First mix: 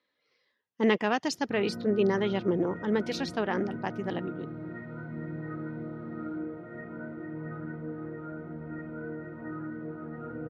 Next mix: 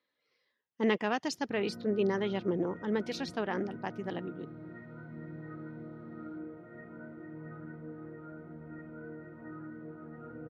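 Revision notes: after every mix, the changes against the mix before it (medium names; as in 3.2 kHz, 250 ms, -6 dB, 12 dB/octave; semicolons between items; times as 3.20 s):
speech -4.0 dB; background -7.0 dB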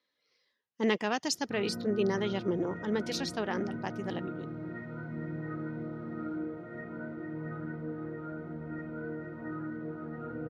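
background +6.5 dB; master: add tone controls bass 0 dB, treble +10 dB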